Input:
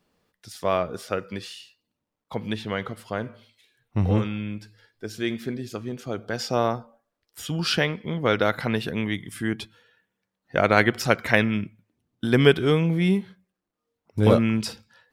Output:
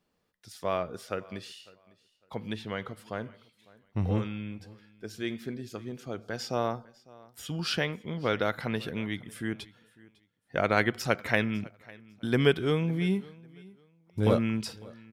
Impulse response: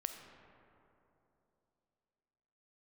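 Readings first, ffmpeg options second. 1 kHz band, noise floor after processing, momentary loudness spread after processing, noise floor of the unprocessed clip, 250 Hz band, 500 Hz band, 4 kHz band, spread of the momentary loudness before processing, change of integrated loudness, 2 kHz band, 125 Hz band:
-6.5 dB, -72 dBFS, 19 LU, -84 dBFS, -6.5 dB, -6.5 dB, -6.5 dB, 17 LU, -6.5 dB, -6.5 dB, -6.5 dB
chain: -af "aecho=1:1:552|1104:0.0708|0.0163,volume=-6.5dB"

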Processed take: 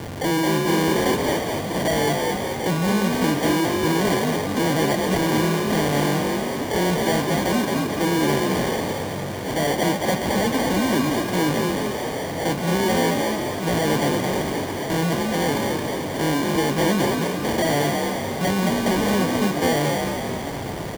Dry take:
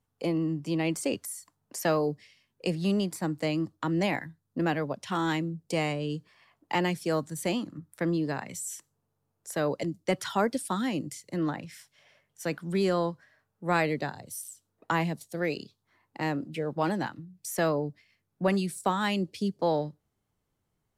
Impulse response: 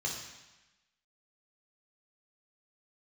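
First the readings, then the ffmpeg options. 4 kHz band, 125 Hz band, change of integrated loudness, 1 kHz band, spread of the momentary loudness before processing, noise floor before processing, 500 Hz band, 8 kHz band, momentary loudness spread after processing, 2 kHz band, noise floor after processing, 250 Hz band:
+12.5 dB, +9.0 dB, +8.5 dB, +9.5 dB, 12 LU, -79 dBFS, +9.0 dB, +10.5 dB, 5 LU, +10.0 dB, -28 dBFS, +9.0 dB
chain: -filter_complex "[0:a]aeval=exprs='val(0)+0.5*0.0266*sgn(val(0))':c=same,acrusher=samples=34:mix=1:aa=0.000001,asoftclip=type=hard:threshold=-27dB,highpass=f=94:p=1,asplit=8[a][b][c][d][e][f][g][h];[b]adelay=220,afreqshift=45,volume=-3dB[i];[c]adelay=440,afreqshift=90,volume=-8.5dB[j];[d]adelay=660,afreqshift=135,volume=-14dB[k];[e]adelay=880,afreqshift=180,volume=-19.5dB[l];[f]adelay=1100,afreqshift=225,volume=-25.1dB[m];[g]adelay=1320,afreqshift=270,volume=-30.6dB[n];[h]adelay=1540,afreqshift=315,volume=-36.1dB[o];[a][i][j][k][l][m][n][o]amix=inputs=8:normalize=0,volume=8dB"

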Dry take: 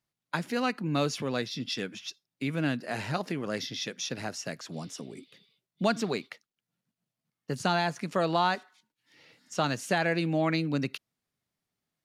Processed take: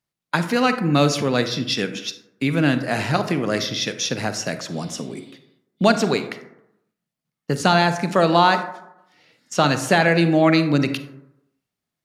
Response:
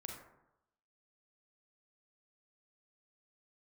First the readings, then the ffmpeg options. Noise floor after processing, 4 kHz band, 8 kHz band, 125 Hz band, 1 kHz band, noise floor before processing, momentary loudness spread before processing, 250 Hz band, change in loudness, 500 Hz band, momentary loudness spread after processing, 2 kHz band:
-85 dBFS, +10.5 dB, +10.5 dB, +11.0 dB, +10.5 dB, under -85 dBFS, 13 LU, +11.0 dB, +11.0 dB, +11.0 dB, 14 LU, +10.5 dB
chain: -filter_complex "[0:a]agate=range=-9dB:threshold=-55dB:ratio=16:detection=peak,asplit=2[a][b];[1:a]atrim=start_sample=2205[c];[b][c]afir=irnorm=-1:irlink=0,volume=0.5dB[d];[a][d]amix=inputs=2:normalize=0,volume=6.5dB"

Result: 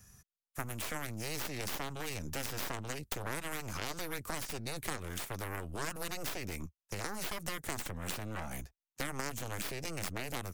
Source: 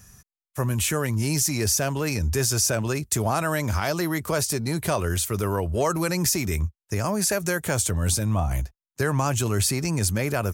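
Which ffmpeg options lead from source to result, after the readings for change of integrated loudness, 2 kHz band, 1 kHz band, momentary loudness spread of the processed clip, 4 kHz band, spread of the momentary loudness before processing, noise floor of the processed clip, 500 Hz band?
-15.5 dB, -10.5 dB, -12.5 dB, 4 LU, -11.5 dB, 5 LU, under -85 dBFS, -16.5 dB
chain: -filter_complex "[0:a]aeval=exprs='0.316*(cos(1*acos(clip(val(0)/0.316,-1,1)))-cos(1*PI/2))+0.158*(cos(2*acos(clip(val(0)/0.316,-1,1)))-cos(2*PI/2))+0.141*(cos(3*acos(clip(val(0)/0.316,-1,1)))-cos(3*PI/2))+0.0141*(cos(6*acos(clip(val(0)/0.316,-1,1)))-cos(6*PI/2))+0.00794*(cos(7*acos(clip(val(0)/0.316,-1,1)))-cos(7*PI/2))':c=same,acrossover=split=290|1300|4100[a][b][c][d];[a]acompressor=threshold=-38dB:ratio=4[e];[b]acompressor=threshold=-41dB:ratio=4[f];[c]acompressor=threshold=-40dB:ratio=4[g];[d]acompressor=threshold=-39dB:ratio=4[h];[e][f][g][h]amix=inputs=4:normalize=0,volume=-3dB"

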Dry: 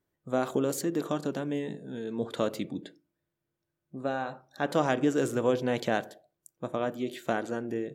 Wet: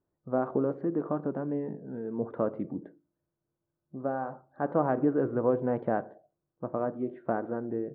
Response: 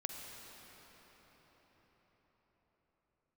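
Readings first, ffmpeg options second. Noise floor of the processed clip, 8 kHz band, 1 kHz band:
-85 dBFS, under -35 dB, -0.5 dB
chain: -af "lowpass=f=1.3k:w=0.5412,lowpass=f=1.3k:w=1.3066"

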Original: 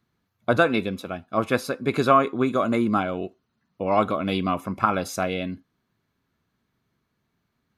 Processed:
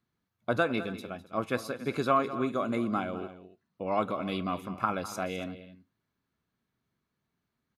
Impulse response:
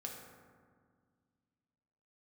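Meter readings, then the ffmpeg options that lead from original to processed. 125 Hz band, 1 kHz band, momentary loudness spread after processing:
-8.0 dB, -8.0 dB, 13 LU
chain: -filter_complex "[0:a]bandreject=f=50:t=h:w=6,bandreject=f=100:t=h:w=6,asplit=2[a][b];[b]aecho=0:1:204|280:0.188|0.119[c];[a][c]amix=inputs=2:normalize=0,volume=-8dB"

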